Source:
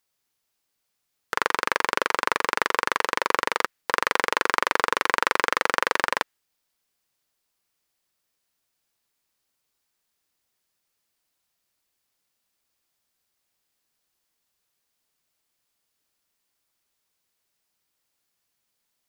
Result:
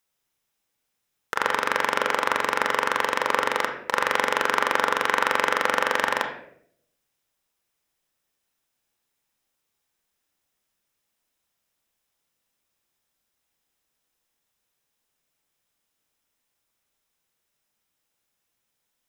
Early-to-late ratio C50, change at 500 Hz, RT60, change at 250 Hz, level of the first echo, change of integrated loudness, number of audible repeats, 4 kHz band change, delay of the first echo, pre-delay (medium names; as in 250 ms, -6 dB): 6.0 dB, +2.5 dB, 0.70 s, +1.5 dB, no echo, +0.5 dB, no echo, 0.0 dB, no echo, 27 ms